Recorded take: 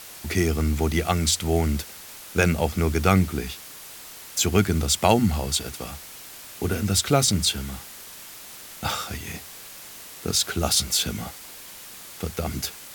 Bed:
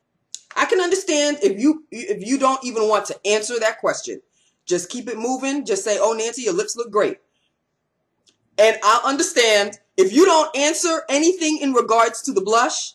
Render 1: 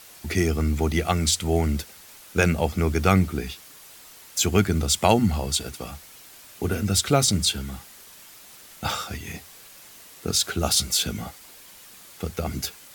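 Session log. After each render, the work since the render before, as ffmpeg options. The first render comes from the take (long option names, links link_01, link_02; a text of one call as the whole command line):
ffmpeg -i in.wav -af "afftdn=noise_reduction=6:noise_floor=-42" out.wav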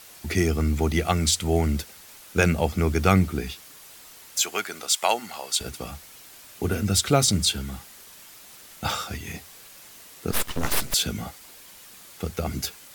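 ffmpeg -i in.wav -filter_complex "[0:a]asettb=1/sr,asplit=3[link_01][link_02][link_03];[link_01]atrim=end=4.414[link_04];[link_02]atrim=start=4.41:end=5.61,asetpts=PTS-STARTPTS,afade=type=in:duration=0.004:curve=qsin,afade=type=out:start_time=1.196:duration=0.004:curve=qsin,highpass=730[link_05];[link_03]atrim=start=5.606[link_06];[link_04][link_05]acrossfade=duration=0.004:curve1=hsin:curve2=qsin[link_07];[link_07][link_06]acrossfade=duration=0.004:curve1=qsin:curve2=hsin,asettb=1/sr,asplit=3[link_08][link_09][link_10];[link_08]atrim=end=10.314[link_11];[link_09]atrim=start=10.31:end=10.94,asetpts=PTS-STARTPTS,afade=type=in:duration=0.004:curve=qsin,afade=type=out:start_time=0.626:duration=0.004:curve=qsin,aeval=exprs='abs(val(0))':channel_layout=same[link_12];[link_10]atrim=start=10.936[link_13];[link_11][link_12]acrossfade=duration=0.004:curve1=hsin:curve2=qsin[link_14];[link_14][link_13]acrossfade=duration=0.004:curve1=qsin:curve2=hsin" out.wav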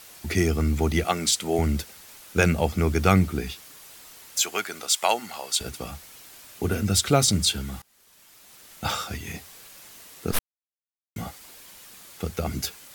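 ffmpeg -i in.wav -filter_complex "[0:a]asettb=1/sr,asplit=3[link_01][link_02][link_03];[link_01]atrim=end=1.044[link_04];[link_02]atrim=start=1.04:end=1.59,asetpts=PTS-STARTPTS,afade=type=in:duration=0.004:curve=qsin,afade=type=out:start_time=0.546:duration=0.004:curve=qsin,highpass=230[link_05];[link_03]atrim=start=1.586[link_06];[link_04][link_05]acrossfade=duration=0.004:curve1=hsin:curve2=qsin[link_07];[link_07][link_06]acrossfade=duration=0.004:curve1=qsin:curve2=hsin,asplit=4[link_08][link_09][link_10][link_11];[link_08]atrim=end=7.82,asetpts=PTS-STARTPTS,afade=type=out:start_time=7.816:duration=0.004:curve=hsin:silence=0.0794328[link_12];[link_09]atrim=start=7.82:end=10.39,asetpts=PTS-STARTPTS,afade=type=in:duration=1.11:silence=0.0794328,afade=type=out:start_time=2.566:duration=0.004:curve=hsin[link_13];[link_10]atrim=start=10.39:end=11.16,asetpts=PTS-STARTPTS,volume=0[link_14];[link_11]atrim=start=11.16,asetpts=PTS-STARTPTS,afade=type=in:duration=0.004:curve=hsin[link_15];[link_12][link_13][link_14][link_15]concat=n=4:v=0:a=1" out.wav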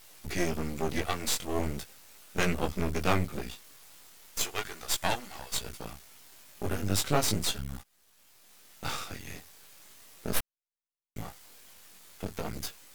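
ffmpeg -i in.wav -af "flanger=delay=16:depth=5.6:speed=0.38,aeval=exprs='max(val(0),0)':channel_layout=same" out.wav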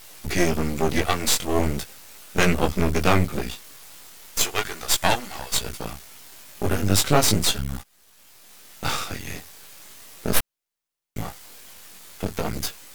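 ffmpeg -i in.wav -af "volume=9dB,alimiter=limit=-2dB:level=0:latency=1" out.wav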